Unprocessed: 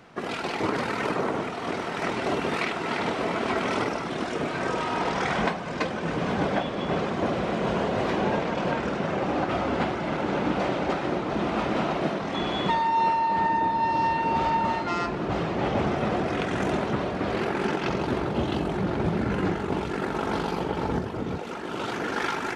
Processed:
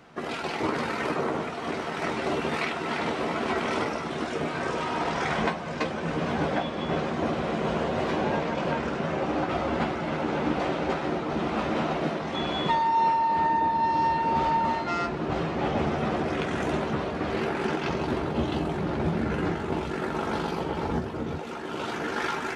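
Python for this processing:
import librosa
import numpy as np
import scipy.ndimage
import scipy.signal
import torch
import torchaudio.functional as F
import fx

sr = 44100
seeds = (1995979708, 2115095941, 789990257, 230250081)

y = fx.doubler(x, sr, ms=13.0, db=-7.0)
y = F.gain(torch.from_numpy(y), -2.0).numpy()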